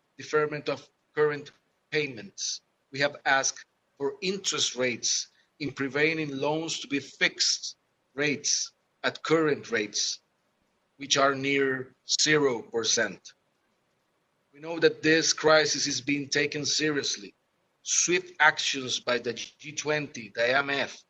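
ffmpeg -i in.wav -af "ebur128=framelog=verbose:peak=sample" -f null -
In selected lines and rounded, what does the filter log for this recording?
Integrated loudness:
  I:         -26.5 LUFS
  Threshold: -37.1 LUFS
Loudness range:
  LRA:         3.9 LU
  Threshold: -47.3 LUFS
  LRA low:   -29.1 LUFS
  LRA high:  -25.2 LUFS
Sample peak:
  Peak:       -6.4 dBFS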